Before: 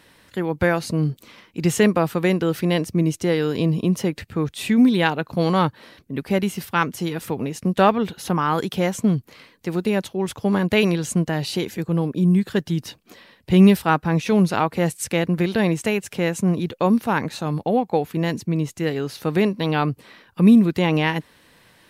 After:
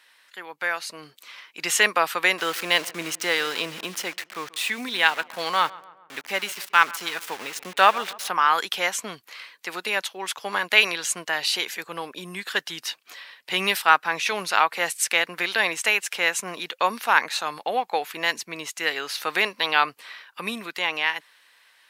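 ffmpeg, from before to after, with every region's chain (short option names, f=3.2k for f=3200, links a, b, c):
-filter_complex "[0:a]asettb=1/sr,asplit=3[a][b][c];[a]atrim=end=2.384[d];[b]atrim=start=2.38:end=8.28,asetpts=PTS-STARTPTS,afade=t=in:d=0.004:c=qsin,afade=t=out:st=5.896:d=0.004:c=qsin,lowshelf=f=96:g=9.5,aeval=exprs='val(0)*gte(abs(val(0)),0.0224)':c=same,asplit=2[e][f];[f]adelay=137,lowpass=f=2.1k:p=1,volume=-19.5dB,asplit=2[g][h];[h]adelay=137,lowpass=f=2.1k:p=1,volume=0.54,asplit=2[i][j];[j]adelay=137,lowpass=f=2.1k:p=1,volume=0.54,asplit=2[k][l];[l]adelay=137,lowpass=f=2.1k:p=1,volume=0.54[m];[e][g][i][k][m]amix=inputs=5:normalize=0,atrim=end_sample=260190[n];[c]atrim=start=8.276[o];[d][n]acrossfade=d=0.004:c1=hsin:c2=qsin[p];[p][o]acrossfade=d=0.004:c1=qsin:c2=hsin,highpass=1.3k,highshelf=f=5.3k:g=-5.5,dynaudnorm=f=160:g=17:m=11.5dB"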